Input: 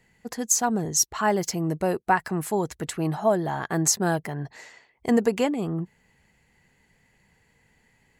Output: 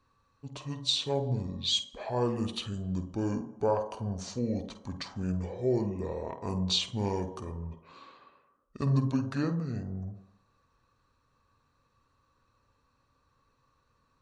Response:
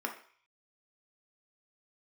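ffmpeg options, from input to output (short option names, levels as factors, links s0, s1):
-filter_complex "[0:a]asplit=2[s0][s1];[1:a]atrim=start_sample=2205,adelay=29[s2];[s1][s2]afir=irnorm=-1:irlink=0,volume=0.335[s3];[s0][s3]amix=inputs=2:normalize=0,asetrate=25442,aresample=44100,volume=0.398"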